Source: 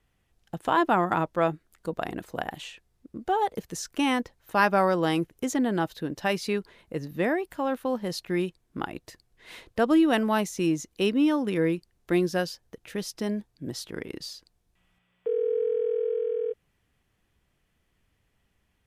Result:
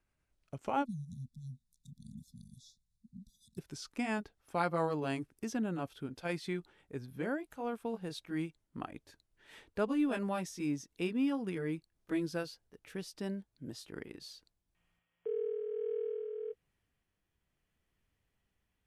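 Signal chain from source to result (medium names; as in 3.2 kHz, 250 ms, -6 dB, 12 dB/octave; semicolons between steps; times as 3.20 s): pitch bend over the whole clip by -3.5 st ending unshifted; spectral selection erased 0.85–3.58 s, 250–3400 Hz; trim -9 dB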